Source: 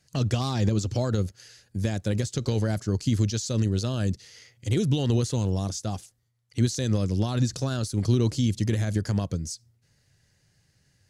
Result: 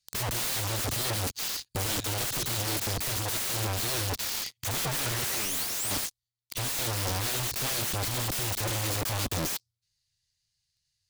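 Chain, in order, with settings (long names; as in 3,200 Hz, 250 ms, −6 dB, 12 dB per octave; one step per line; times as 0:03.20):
0:04.79–0:05.91: sound drawn into the spectrogram rise 450–9,600 Hz −36 dBFS
guitar amp tone stack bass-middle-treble 10-0-10
leveller curve on the samples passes 5
graphic EQ with 15 bands 630 Hz −6 dB, 1,600 Hz −8 dB, 4,000 Hz +7 dB
0:01.78–0:03.67: flutter between parallel walls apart 11.6 metres, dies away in 0.25 s
wrap-around overflow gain 26 dB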